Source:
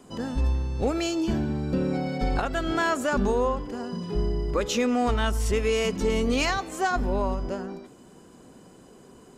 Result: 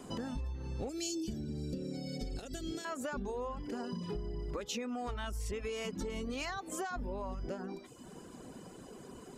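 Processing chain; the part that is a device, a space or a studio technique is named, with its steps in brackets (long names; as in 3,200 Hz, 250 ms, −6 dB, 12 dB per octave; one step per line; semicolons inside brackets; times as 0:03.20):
reverb reduction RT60 0.66 s
serial compression, peaks first (downward compressor, threshold −32 dBFS, peak gain reduction 11 dB; downward compressor 2 to 1, threshold −42 dBFS, peak gain reduction 7 dB)
0:00.89–0:02.85: drawn EQ curve 470 Hz 0 dB, 1,000 Hz −20 dB, 5,500 Hz +9 dB
level +2 dB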